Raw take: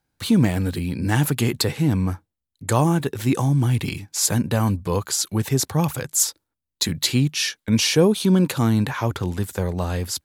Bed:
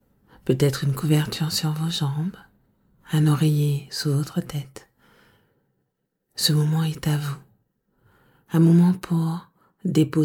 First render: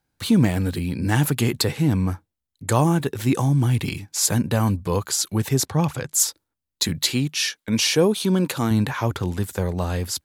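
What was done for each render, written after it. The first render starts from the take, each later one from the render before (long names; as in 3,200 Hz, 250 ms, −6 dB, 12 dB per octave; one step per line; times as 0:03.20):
0:05.66–0:06.14: high-frequency loss of the air 53 metres
0:07.02–0:08.71: low-shelf EQ 140 Hz −10 dB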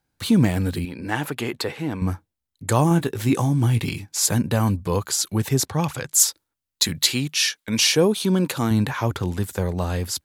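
0:00.85–0:02.02: bass and treble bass −13 dB, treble −10 dB
0:02.89–0:04.03: double-tracking delay 18 ms −10.5 dB
0:05.73–0:07.92: tilt shelving filter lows −3 dB, about 850 Hz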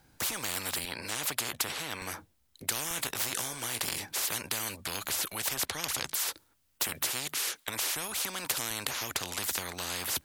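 downward compressor 1.5 to 1, threshold −27 dBFS, peak gain reduction 6 dB
every bin compressed towards the loudest bin 10 to 1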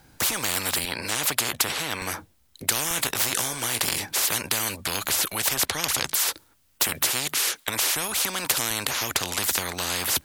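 level +8 dB
brickwall limiter −2 dBFS, peak gain reduction 2 dB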